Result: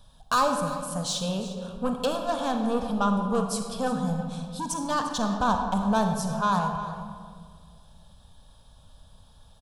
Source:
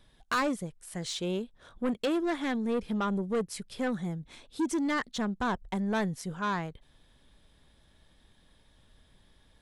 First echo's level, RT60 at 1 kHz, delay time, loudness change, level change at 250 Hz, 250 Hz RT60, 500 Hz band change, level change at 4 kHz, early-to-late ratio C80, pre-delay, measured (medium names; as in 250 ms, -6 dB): -15.5 dB, 1.8 s, 351 ms, +5.0 dB, +3.0 dB, 2.4 s, +4.5 dB, +5.5 dB, 6.0 dB, 36 ms